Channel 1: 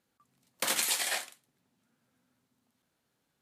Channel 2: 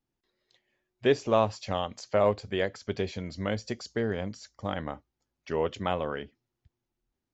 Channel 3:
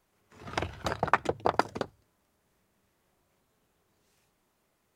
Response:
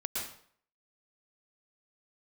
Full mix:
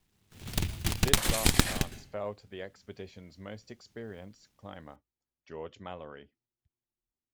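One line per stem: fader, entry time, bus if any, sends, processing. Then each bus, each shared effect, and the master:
-4.5 dB, 0.55 s, send -19 dB, none
-13.0 dB, 0.00 s, no send, none
-2.5 dB, 0.00 s, send -15.5 dB, comb filter that takes the minimum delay 0.87 ms; bass shelf 270 Hz +8 dB; delay time shaken by noise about 2.8 kHz, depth 0.27 ms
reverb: on, RT60 0.55 s, pre-delay 105 ms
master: none

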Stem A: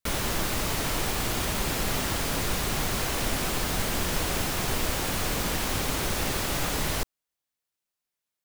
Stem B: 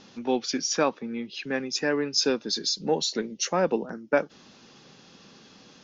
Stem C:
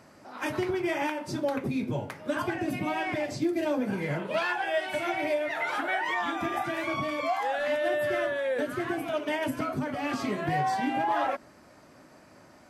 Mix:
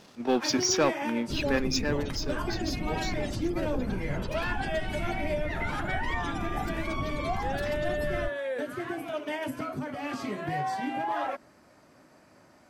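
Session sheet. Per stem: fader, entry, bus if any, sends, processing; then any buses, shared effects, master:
-2.5 dB, 1.25 s, no send, spectral gate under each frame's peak -15 dB strong; high-order bell 1.1 kHz -12.5 dB 2.6 oct
1.66 s -5 dB -> 2.25 s -18 dB, 0.00 s, no send, waveshaping leveller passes 2; attacks held to a fixed rise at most 430 dB/s
-3.5 dB, 0.00 s, no send, none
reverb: none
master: none

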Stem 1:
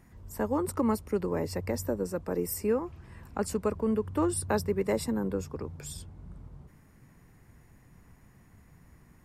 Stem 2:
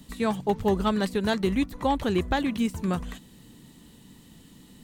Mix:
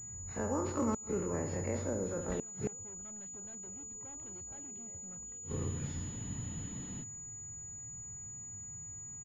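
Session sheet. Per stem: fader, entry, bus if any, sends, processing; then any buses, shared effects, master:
-10.0 dB, 0.00 s, no send, echo send -8 dB, every event in the spectrogram widened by 60 ms
-5.5 dB, 2.20 s, no send, no echo send, hard clipper -28.5 dBFS, distortion -6 dB; level rider gain up to 9.5 dB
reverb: none
echo: feedback delay 69 ms, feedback 56%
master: peaking EQ 110 Hz +12.5 dB 0.72 oct; inverted gate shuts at -23 dBFS, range -30 dB; class-D stage that switches slowly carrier 6.9 kHz

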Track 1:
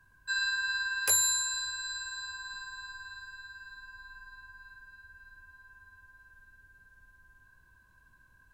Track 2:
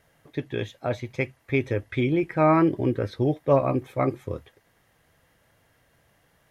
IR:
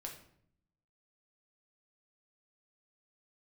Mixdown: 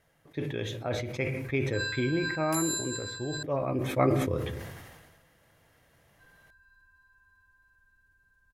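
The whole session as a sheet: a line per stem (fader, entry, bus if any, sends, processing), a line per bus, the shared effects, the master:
-8.5 dB, 1.45 s, muted 3.43–6.19 s, no send, none
2.08 s -8 dB -> 2.60 s -14.5 dB -> 3.50 s -14.5 dB -> 3.97 s -3 dB, 0.00 s, send -4.5 dB, none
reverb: on, RT60 0.65 s, pre-delay 6 ms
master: decay stretcher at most 39 dB/s

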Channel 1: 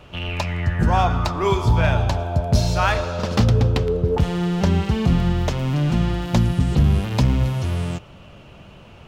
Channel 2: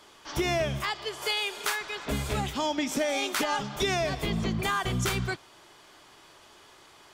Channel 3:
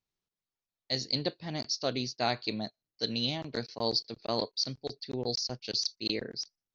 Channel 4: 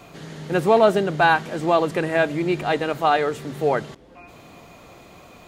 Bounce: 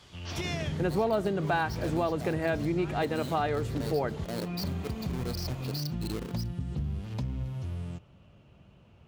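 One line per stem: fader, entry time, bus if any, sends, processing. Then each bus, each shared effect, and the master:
-18.5 dB, 0.00 s, no send, none
-11.5 dB, 0.00 s, no send, peaking EQ 3.8 kHz +11.5 dB 3 oct; auto duck -22 dB, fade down 0.20 s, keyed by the third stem
-6.5 dB, 0.00 s, no send, square wave that keeps the level; peak limiter -21.5 dBFS, peak gain reduction 6 dB
-0.5 dB, 0.30 s, no send, none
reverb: none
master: high-pass 51 Hz; bass shelf 330 Hz +8.5 dB; compression 2.5:1, threshold -31 dBFS, peak gain reduction 15 dB

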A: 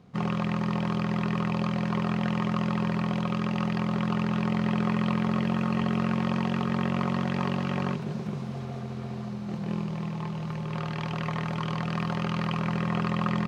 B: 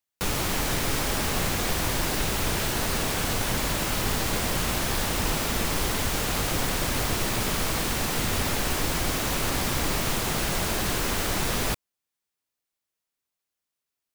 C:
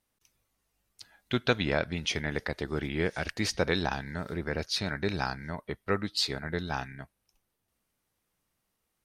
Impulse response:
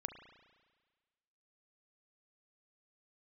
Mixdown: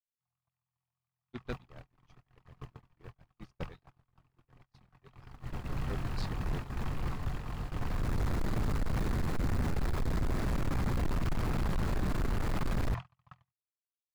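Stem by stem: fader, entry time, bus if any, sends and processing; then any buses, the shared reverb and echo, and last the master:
-9.5 dB, 0.05 s, send -10.5 dB, elliptic band-stop 130–710 Hz, stop band 40 dB; de-hum 140.4 Hz, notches 33; vibrato with a chosen wave saw down 6.8 Hz, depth 100 cents
5.02 s -18.5 dB -> 5.62 s -9.5 dB -> 7.79 s -9.5 dB -> 8.21 s -3 dB, 1.20 s, send -17.5 dB, median filter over 15 samples; peaking EQ 630 Hz -4 dB 1.4 oct
-18.0 dB, 0.00 s, send -9.5 dB, harmonic-percussive separation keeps percussive; bass shelf 450 Hz +7.5 dB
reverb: on, RT60 1.5 s, pre-delay 34 ms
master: gate -35 dBFS, range -54 dB; bass shelf 170 Hz +10 dB; saturation -26.5 dBFS, distortion -8 dB

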